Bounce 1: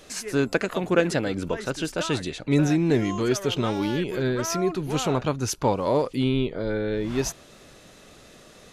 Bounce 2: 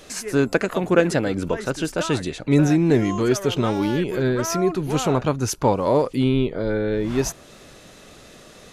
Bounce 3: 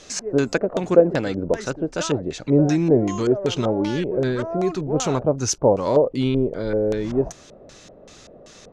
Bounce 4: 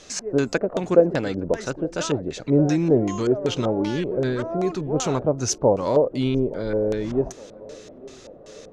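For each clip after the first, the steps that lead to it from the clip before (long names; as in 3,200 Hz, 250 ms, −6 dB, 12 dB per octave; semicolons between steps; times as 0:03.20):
dynamic equaliser 3,600 Hz, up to −4 dB, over −43 dBFS, Q 0.86; level +4 dB
auto-filter low-pass square 2.6 Hz 600–6,300 Hz; level −2 dB
feedback echo with a band-pass in the loop 866 ms, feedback 67%, band-pass 420 Hz, level −20.5 dB; level −1.5 dB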